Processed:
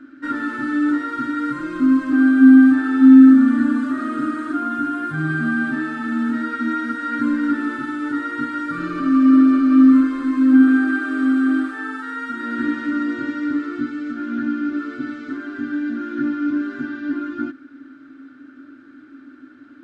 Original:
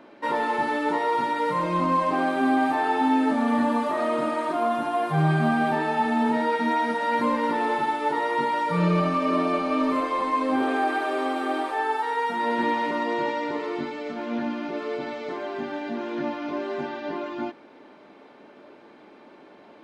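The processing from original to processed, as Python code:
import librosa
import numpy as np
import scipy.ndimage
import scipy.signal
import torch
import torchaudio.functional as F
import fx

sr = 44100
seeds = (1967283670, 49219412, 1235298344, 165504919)

y = fx.curve_eq(x, sr, hz=(140.0, 190.0, 270.0, 410.0, 970.0, 1400.0, 2200.0, 5200.0, 7900.0, 11000.0), db=(0, -26, 13, -19, -25, 6, -13, -10, -6, -15))
y = y * 10.0 ** (6.0 / 20.0)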